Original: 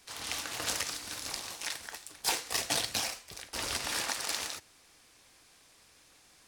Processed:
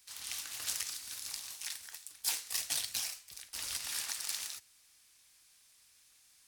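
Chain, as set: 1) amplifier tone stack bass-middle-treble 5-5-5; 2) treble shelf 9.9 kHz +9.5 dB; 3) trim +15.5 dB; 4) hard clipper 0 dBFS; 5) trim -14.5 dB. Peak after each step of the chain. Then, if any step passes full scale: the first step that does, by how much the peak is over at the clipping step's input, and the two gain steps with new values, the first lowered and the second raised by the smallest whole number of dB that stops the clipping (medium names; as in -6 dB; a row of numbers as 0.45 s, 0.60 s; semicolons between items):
-20.0 dBFS, -17.5 dBFS, -2.0 dBFS, -2.0 dBFS, -16.5 dBFS; nothing clips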